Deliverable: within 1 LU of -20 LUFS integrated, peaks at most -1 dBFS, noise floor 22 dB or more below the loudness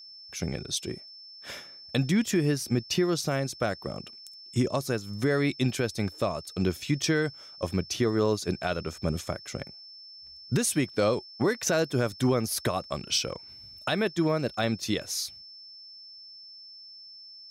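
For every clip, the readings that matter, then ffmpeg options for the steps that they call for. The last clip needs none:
steady tone 5.3 kHz; tone level -45 dBFS; loudness -28.5 LUFS; peak level -13.5 dBFS; loudness target -20.0 LUFS
-> -af "bandreject=f=5300:w=30"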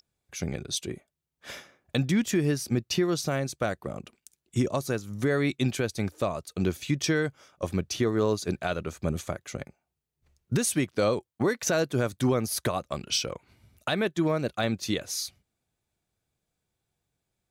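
steady tone not found; loudness -28.5 LUFS; peak level -13.5 dBFS; loudness target -20.0 LUFS
-> -af "volume=2.66"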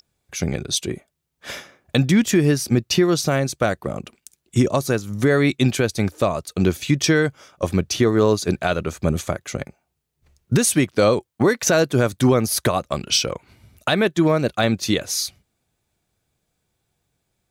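loudness -20.0 LUFS; peak level -5.0 dBFS; noise floor -75 dBFS

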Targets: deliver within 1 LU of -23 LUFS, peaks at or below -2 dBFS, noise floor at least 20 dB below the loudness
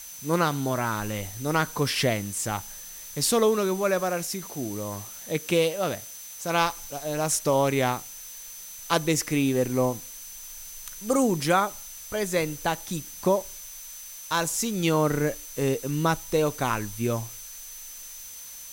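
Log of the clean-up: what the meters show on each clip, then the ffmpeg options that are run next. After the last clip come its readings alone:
steady tone 6.1 kHz; tone level -43 dBFS; noise floor -42 dBFS; noise floor target -47 dBFS; loudness -26.5 LUFS; peak level -8.0 dBFS; loudness target -23.0 LUFS
-> -af "bandreject=f=6100:w=30"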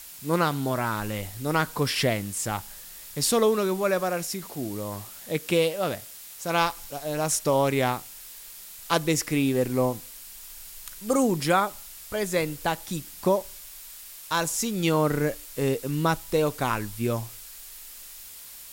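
steady tone not found; noise floor -44 dBFS; noise floor target -47 dBFS
-> -af "afftdn=nr=6:nf=-44"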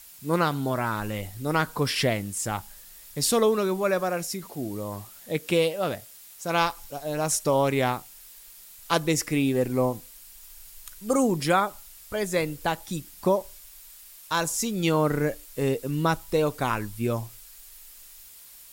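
noise floor -48 dBFS; loudness -26.5 LUFS; peak level -8.0 dBFS; loudness target -23.0 LUFS
-> -af "volume=1.5"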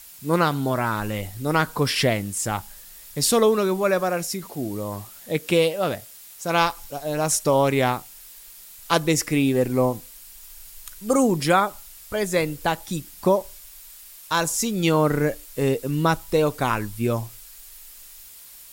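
loudness -23.0 LUFS; peak level -4.5 dBFS; noise floor -45 dBFS

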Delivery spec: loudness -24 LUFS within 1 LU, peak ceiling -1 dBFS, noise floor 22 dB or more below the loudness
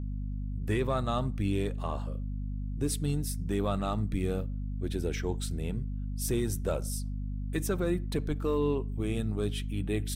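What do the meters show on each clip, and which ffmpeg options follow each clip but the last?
hum 50 Hz; highest harmonic 250 Hz; hum level -32 dBFS; loudness -32.5 LUFS; peak level -18.0 dBFS; loudness target -24.0 LUFS
-> -af "bandreject=f=50:t=h:w=4,bandreject=f=100:t=h:w=4,bandreject=f=150:t=h:w=4,bandreject=f=200:t=h:w=4,bandreject=f=250:t=h:w=4"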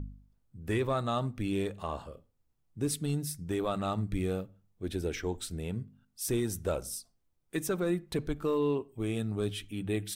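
hum not found; loudness -33.5 LUFS; peak level -19.5 dBFS; loudness target -24.0 LUFS
-> -af "volume=2.99"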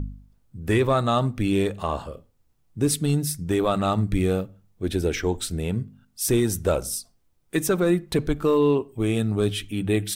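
loudness -24.0 LUFS; peak level -10.0 dBFS; noise floor -65 dBFS

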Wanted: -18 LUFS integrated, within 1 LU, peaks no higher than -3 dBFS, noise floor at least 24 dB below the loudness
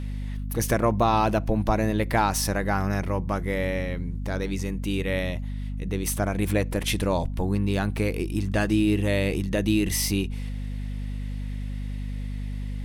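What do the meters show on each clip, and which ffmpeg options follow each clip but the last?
hum 50 Hz; highest harmonic 250 Hz; hum level -28 dBFS; loudness -26.5 LUFS; peak level -10.0 dBFS; loudness target -18.0 LUFS
-> -af "bandreject=f=50:t=h:w=4,bandreject=f=100:t=h:w=4,bandreject=f=150:t=h:w=4,bandreject=f=200:t=h:w=4,bandreject=f=250:t=h:w=4"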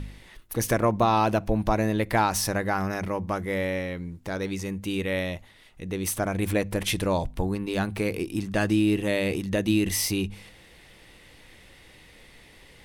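hum not found; loudness -26.5 LUFS; peak level -10.0 dBFS; loudness target -18.0 LUFS
-> -af "volume=2.66,alimiter=limit=0.708:level=0:latency=1"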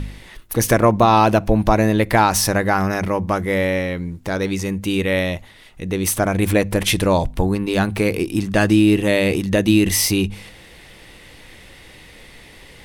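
loudness -18.0 LUFS; peak level -3.0 dBFS; noise floor -44 dBFS

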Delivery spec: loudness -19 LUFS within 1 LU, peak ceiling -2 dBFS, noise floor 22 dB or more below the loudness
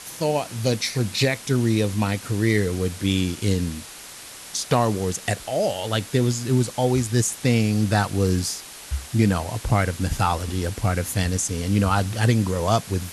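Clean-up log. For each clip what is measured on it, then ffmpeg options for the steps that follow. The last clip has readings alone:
noise floor -40 dBFS; noise floor target -45 dBFS; loudness -23.0 LUFS; peak level -6.0 dBFS; loudness target -19.0 LUFS
-> -af "afftdn=nr=6:nf=-40"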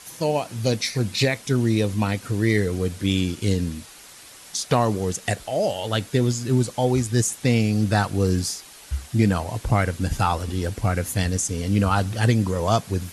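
noise floor -45 dBFS; loudness -23.0 LUFS; peak level -6.5 dBFS; loudness target -19.0 LUFS
-> -af "volume=1.58"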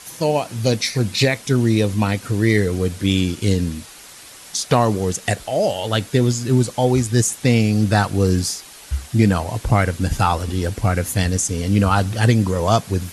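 loudness -19.0 LUFS; peak level -2.5 dBFS; noise floor -41 dBFS

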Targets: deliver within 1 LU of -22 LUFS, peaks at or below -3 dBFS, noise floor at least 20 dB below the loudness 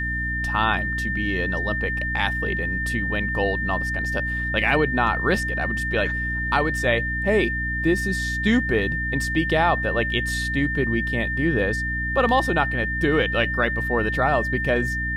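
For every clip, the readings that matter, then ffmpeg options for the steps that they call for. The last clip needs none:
hum 60 Hz; highest harmonic 300 Hz; hum level -27 dBFS; steady tone 1.8 kHz; tone level -25 dBFS; loudness -22.0 LUFS; peak level -6.5 dBFS; loudness target -22.0 LUFS
-> -af "bandreject=f=60:t=h:w=4,bandreject=f=120:t=h:w=4,bandreject=f=180:t=h:w=4,bandreject=f=240:t=h:w=4,bandreject=f=300:t=h:w=4"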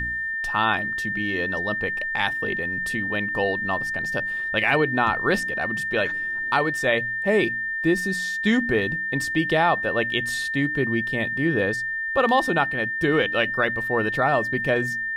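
hum not found; steady tone 1.8 kHz; tone level -25 dBFS
-> -af "bandreject=f=1800:w=30"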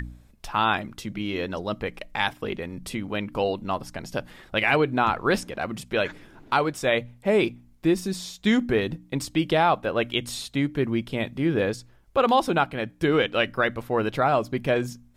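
steady tone not found; loudness -25.5 LUFS; peak level -8.0 dBFS; loudness target -22.0 LUFS
-> -af "volume=1.5"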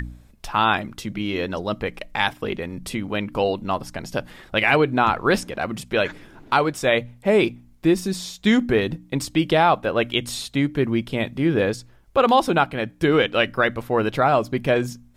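loudness -22.0 LUFS; peak level -4.5 dBFS; noise floor -51 dBFS

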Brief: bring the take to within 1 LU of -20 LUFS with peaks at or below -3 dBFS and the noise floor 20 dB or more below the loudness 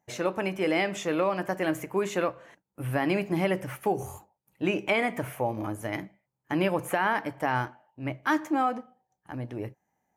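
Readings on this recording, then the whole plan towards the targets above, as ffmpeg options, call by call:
loudness -29.0 LUFS; peak level -13.0 dBFS; loudness target -20.0 LUFS
-> -af "volume=2.82"

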